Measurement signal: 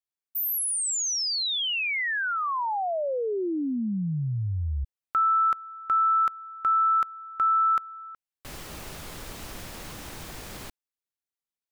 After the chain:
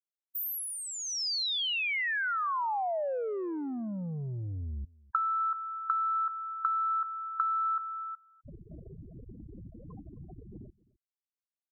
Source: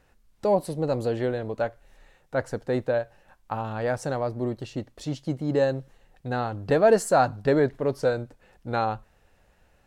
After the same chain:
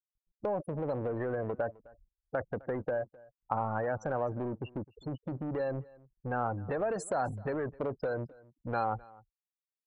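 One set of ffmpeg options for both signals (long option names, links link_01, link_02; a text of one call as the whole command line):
ffmpeg -i in.wav -filter_complex "[0:a]afftfilt=real='re*gte(hypot(re,im),0.0316)':imag='im*gte(hypot(re,im),0.0316)':win_size=1024:overlap=0.75,highpass=frequency=100:poles=1,acrossover=split=6100[link_01][link_02];[link_02]acompressor=threshold=-34dB:ratio=4:attack=1:release=60[link_03];[link_01][link_03]amix=inputs=2:normalize=0,equalizer=frequency=7300:width_type=o:width=1.4:gain=-11,asplit=2[link_04][link_05];[link_05]alimiter=limit=-19dB:level=0:latency=1,volume=1dB[link_06];[link_04][link_06]amix=inputs=2:normalize=0,acompressor=threshold=-30dB:ratio=6:attack=43:release=30:knee=1:detection=peak,acrossover=split=580[link_07][link_08];[link_07]asoftclip=type=tanh:threshold=-30dB[link_09];[link_09][link_08]amix=inputs=2:normalize=0,aecho=1:1:259:0.0708,volume=-3.5dB" out.wav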